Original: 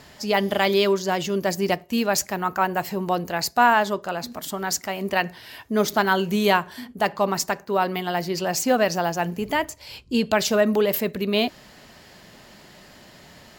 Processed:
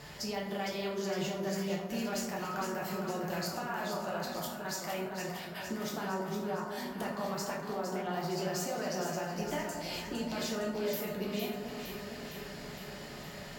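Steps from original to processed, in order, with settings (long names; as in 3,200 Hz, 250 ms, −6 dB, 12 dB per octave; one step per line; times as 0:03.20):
0:06.04–0:06.70: low-pass filter 1,400 Hz 24 dB per octave
0:07.63–0:08.13: treble cut that deepens with the level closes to 1,100 Hz, closed at −20 dBFS
brickwall limiter −15.5 dBFS, peak gain reduction 10.5 dB
downward compressor 5 to 1, threshold −35 dBFS, peak gain reduction 14 dB
0:04.46–0:05.54: gate pattern "xx.xx...x" 113 BPM
delay that swaps between a low-pass and a high-pass 230 ms, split 930 Hz, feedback 81%, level −5 dB
dense smooth reverb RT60 0.77 s, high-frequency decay 0.6×, DRR −3 dB
level −4 dB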